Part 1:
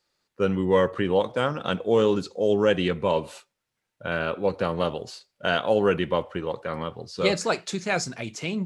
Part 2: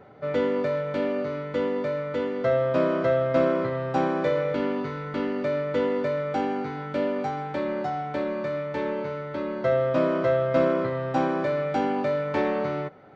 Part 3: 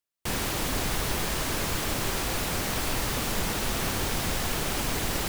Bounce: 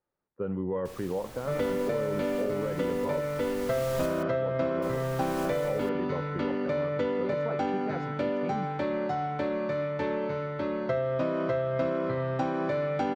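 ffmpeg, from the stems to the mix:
-filter_complex "[0:a]alimiter=limit=-15dB:level=0:latency=1:release=49,lowpass=1.1k,volume=-6dB,asplit=2[a][b];[1:a]equalizer=f=92:t=o:w=1.4:g=4,adelay=1250,volume=-0.5dB[c];[2:a]adelay=600,volume=-9dB,asplit=3[d][e][f];[d]atrim=end=4.23,asetpts=PTS-STARTPTS,afade=t=out:st=4.226:d=0.004:c=hsin[g];[e]atrim=start=4.23:end=4.82,asetpts=PTS-STARTPTS,volume=0[h];[f]atrim=start=4.82,asetpts=PTS-STARTPTS,afade=t=in:d=0.004:c=hsin[i];[g][h][i]concat=n=3:v=0:a=1[j];[b]apad=whole_len=259727[k];[j][k]sidechaincompress=threshold=-38dB:ratio=6:attack=8:release=1030[l];[a][c]amix=inputs=2:normalize=0,acompressor=threshold=-25dB:ratio=6,volume=0dB[m];[l][m]amix=inputs=2:normalize=0"

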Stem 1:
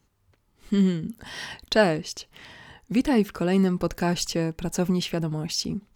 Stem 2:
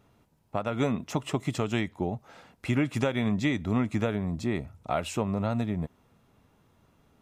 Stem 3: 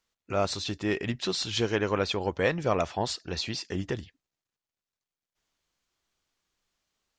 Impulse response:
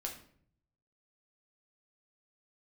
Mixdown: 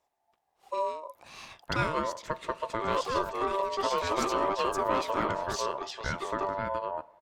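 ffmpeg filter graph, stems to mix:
-filter_complex "[0:a]bandreject=f=580:w=12,volume=-7.5dB[a];[1:a]highshelf=f=4.1k:g=-9.5,adelay=1150,volume=-2.5dB,asplit=2[b][c];[c]volume=-13.5dB[d];[2:a]equalizer=f=390:w=8:g=15,aeval=exprs='(tanh(7.94*val(0)+0.3)-tanh(0.3))/7.94':c=same,adelay=2500,volume=-5.5dB,asplit=2[e][f];[f]volume=-14dB[g];[3:a]atrim=start_sample=2205[h];[d][g]amix=inputs=2:normalize=0[i];[i][h]afir=irnorm=-1:irlink=0[j];[a][b][e][j]amix=inputs=4:normalize=0,aeval=exprs='val(0)*sin(2*PI*780*n/s)':c=same"

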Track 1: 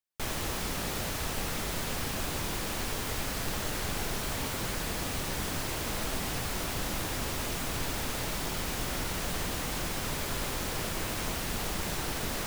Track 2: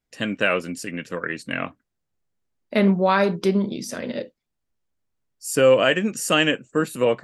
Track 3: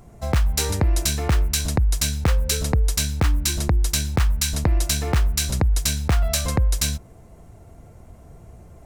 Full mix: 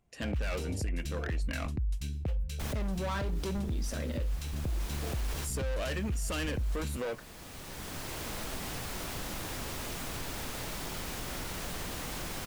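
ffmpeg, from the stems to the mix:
-filter_complex "[0:a]adelay=2400,volume=-3.5dB[a];[1:a]asoftclip=type=hard:threshold=-22dB,volume=-6.5dB,asplit=2[b][c];[2:a]equalizer=f=2.8k:w=1.7:g=10,afwtdn=0.0891,volume=-10.5dB[d];[c]apad=whole_len=655527[e];[a][e]sidechaincompress=threshold=-45dB:ratio=8:attack=7.2:release=1110[f];[f][b]amix=inputs=2:normalize=0,acompressor=threshold=-33dB:ratio=6,volume=0dB[g];[d][g]amix=inputs=2:normalize=0,alimiter=level_in=2.5dB:limit=-24dB:level=0:latency=1:release=11,volume=-2.5dB"

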